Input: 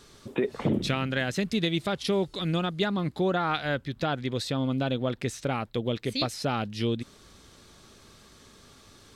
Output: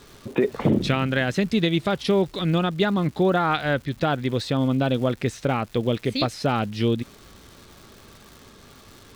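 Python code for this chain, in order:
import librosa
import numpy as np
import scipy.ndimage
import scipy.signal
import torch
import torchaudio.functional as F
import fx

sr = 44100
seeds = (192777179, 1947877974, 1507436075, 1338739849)

y = fx.high_shelf(x, sr, hz=4600.0, db=-9.5)
y = fx.dmg_crackle(y, sr, seeds[0], per_s=360.0, level_db=-44.0)
y = y * 10.0 ** (6.0 / 20.0)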